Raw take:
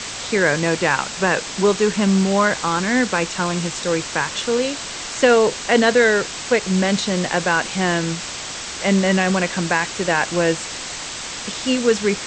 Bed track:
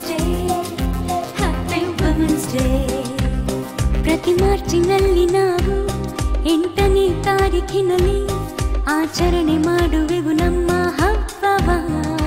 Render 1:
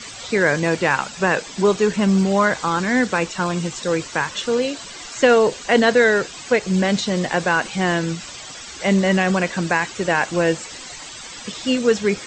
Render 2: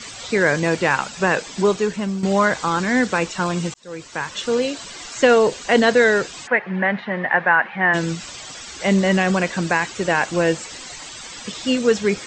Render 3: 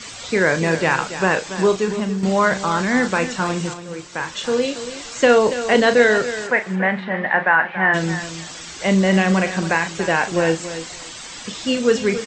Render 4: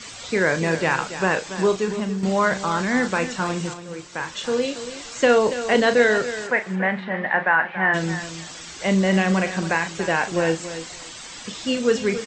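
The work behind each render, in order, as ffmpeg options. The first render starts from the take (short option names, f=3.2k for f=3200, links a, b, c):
-af "afftdn=nr=12:nf=-30"
-filter_complex "[0:a]asplit=3[a][b][c];[a]afade=t=out:st=6.46:d=0.02[d];[b]highpass=230,equalizer=f=300:t=q:w=4:g=-10,equalizer=f=450:t=q:w=4:g=-7,equalizer=f=870:t=q:w=4:g=5,equalizer=f=1.8k:t=q:w=4:g=10,lowpass=f=2.3k:w=0.5412,lowpass=f=2.3k:w=1.3066,afade=t=in:st=6.46:d=0.02,afade=t=out:st=7.93:d=0.02[e];[c]afade=t=in:st=7.93:d=0.02[f];[d][e][f]amix=inputs=3:normalize=0,asplit=3[g][h][i];[g]atrim=end=2.23,asetpts=PTS-STARTPTS,afade=t=out:st=1.59:d=0.64:silence=0.266073[j];[h]atrim=start=2.23:end=3.74,asetpts=PTS-STARTPTS,afade=t=in:d=0.004:c=hsin:silence=0.266073,afade=t=out:st=1.506:d=0.004:c=hsin[k];[i]atrim=start=3.74,asetpts=PTS-STARTPTS,afade=t=in:d=0.78[l];[j][k][l]concat=n=3:v=0:a=1"
-filter_complex "[0:a]asplit=2[a][b];[b]adelay=37,volume=-10dB[c];[a][c]amix=inputs=2:normalize=0,aecho=1:1:282|564:0.251|0.0402"
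-af "volume=-3dB"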